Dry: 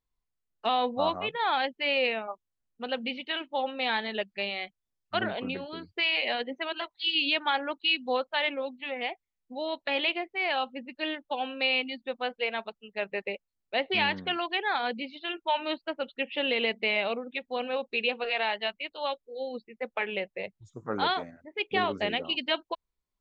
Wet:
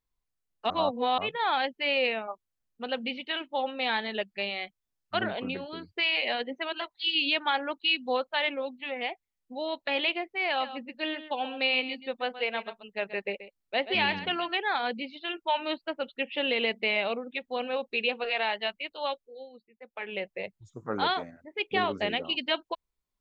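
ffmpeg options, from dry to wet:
-filter_complex "[0:a]asettb=1/sr,asplit=3[a][b][c];[a]atrim=end=10.474[d];[b]atrim=start=10.47:end=14.55,asetpts=PTS-STARTPTS,afade=t=in:d=0.004:c=qsin,afade=t=out:st=4.076:d=0.004:c=qsin,aecho=1:1:131:0.237,atrim=end_sample=179928[e];[c]atrim=start=14.546[f];[d][e]acrossfade=d=0.004:c1=hsin:c2=qsin[g];[g][f]acrossfade=d=0.004:c1=qsin:c2=hsin,asplit=5[h][i][j][k][l];[h]atrim=end=0.702[m];[i]atrim=start=0.698:end=1.182,asetpts=PTS-STARTPTS,areverse[n];[j]atrim=start=1.178:end=19.49,asetpts=PTS-STARTPTS,afade=t=out:st=17.932:d=0.38:silence=0.199526[o];[k]atrim=start=19.49:end=19.89,asetpts=PTS-STARTPTS,volume=-14dB[p];[l]atrim=start=19.89,asetpts=PTS-STARTPTS,afade=t=in:d=0.38:silence=0.199526[q];[m][n]acrossfade=d=0.004:c1=hsin:c2=hsin[r];[o][p][q]concat=n=3:v=0:a=1[s];[r][s]acrossfade=d=0.004:c1=hsin:c2=hsin"

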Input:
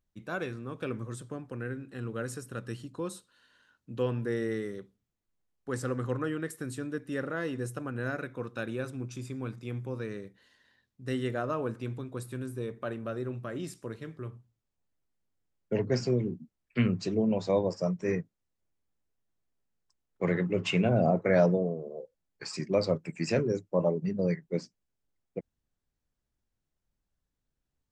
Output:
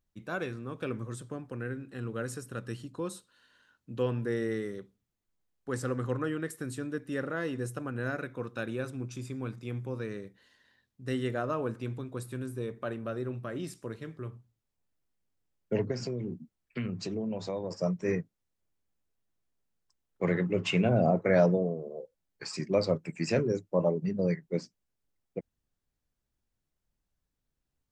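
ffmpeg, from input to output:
-filter_complex "[0:a]asettb=1/sr,asplit=3[a][b][c];[a]atrim=end=12.964[d];[b]atrim=start=12.96:end=13.71,asetpts=PTS-STARTPTS,afade=t=in:d=0.004:c=qsin,afade=t=out:st=0.746:d=0.004:c=qsin,bandreject=f=7k:w=8.7[e];[c]atrim=start=13.706[f];[d][e]acrossfade=d=0.004:c1=hsin:c2=qsin[g];[g][f]acrossfade=d=0.004:c1=qsin:c2=hsin,asettb=1/sr,asplit=3[h][i][j];[h]atrim=end=15.914[k];[i]atrim=start=15.91:end=17.71,asetpts=PTS-STARTPTS,afade=t=in:d=0.004:c=qsin,afade=t=out:st=1.796:d=0.004:c=qsin,acompressor=threshold=-31dB:ratio=4:attack=3.2:release=140:knee=1:detection=peak[l];[j]atrim=start=17.706[m];[k][l]acrossfade=d=0.004:c1=hsin:c2=qsin[n];[n][m]acrossfade=d=0.004:c1=qsin:c2=hsin"

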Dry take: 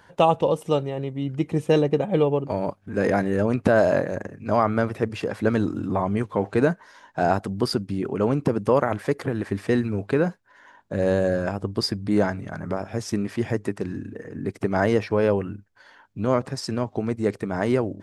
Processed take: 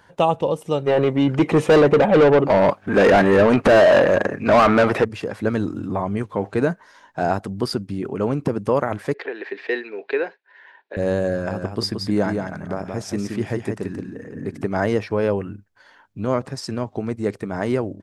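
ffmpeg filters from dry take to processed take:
-filter_complex "[0:a]asplit=3[a][b][c];[a]afade=t=out:st=0.86:d=0.02[d];[b]asplit=2[e][f];[f]highpass=f=720:p=1,volume=28dB,asoftclip=type=tanh:threshold=-5dB[g];[e][g]amix=inputs=2:normalize=0,lowpass=f=1.8k:p=1,volume=-6dB,afade=t=in:st=0.86:d=0.02,afade=t=out:st=5.03:d=0.02[h];[c]afade=t=in:st=5.03:d=0.02[i];[d][h][i]amix=inputs=3:normalize=0,asettb=1/sr,asplit=3[j][k][l];[j]atrim=end=9.144[m];[k]atrim=start=9.14:end=10.97,asetpts=PTS-STARTPTS,afade=t=in:d=0.004:c=qsin,afade=t=out:st=1.826:d=0.004:c=qsin,highpass=f=400:w=0.5412,highpass=f=400:w=1.3066,equalizer=f=400:t=q:w=4:g=5,equalizer=f=580:t=q:w=4:g=-4,equalizer=f=1.2k:t=q:w=4:g=-7,equalizer=f=1.8k:t=q:w=4:g=7,equalizer=f=2.5k:t=q:w=4:g=7,equalizer=f=4k:t=q:w=4:g=4,lowpass=f=4.3k:w=0.5412,lowpass=f=4.3k:w=1.3066[n];[l]atrim=start=10.966[o];[m][n]acrossfade=d=0.004:c1=hsin:c2=qsin[p];[p][o]acrossfade=d=0.004:c1=qsin:c2=hsin,asplit=3[q][r][s];[q]afade=t=out:st=11.49:d=0.02[t];[r]aecho=1:1:175:0.531,afade=t=in:st=11.49:d=0.02,afade=t=out:st=14.61:d=0.02[u];[s]afade=t=in:st=14.61:d=0.02[v];[t][u][v]amix=inputs=3:normalize=0"

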